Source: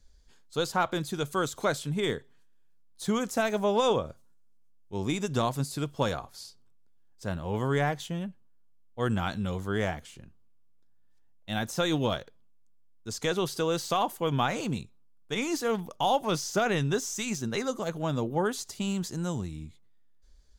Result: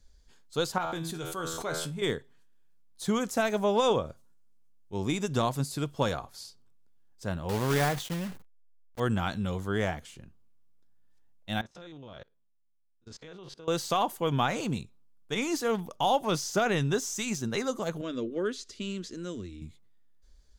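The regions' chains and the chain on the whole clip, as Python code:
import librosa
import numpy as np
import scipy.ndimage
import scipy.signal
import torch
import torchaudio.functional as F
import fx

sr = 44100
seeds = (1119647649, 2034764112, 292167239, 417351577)

y = fx.chain(x, sr, fx.comb_fb(f0_hz=82.0, decay_s=0.36, harmonics='all', damping=0.0, mix_pct=80),
    fx.sustainer(db_per_s=22.0), at=(0.78, 2.02))
y = fx.chain(y, sr, fx.block_float(bits=3),
    fx.sustainer(db_per_s=99.0), at=(7.49, 9.0))
y = fx.chain(y, sr, fx.spec_steps(hold_ms=50),
    fx.lowpass(hz=4100.0, slope=12),
    fx.level_steps(step_db=23), at=(11.61, 13.68))
y = fx.chain(y, sr, fx.lowpass(hz=4900.0, slope=12),
    fx.fixed_phaser(hz=340.0, stages=4), at=(18.01, 19.62))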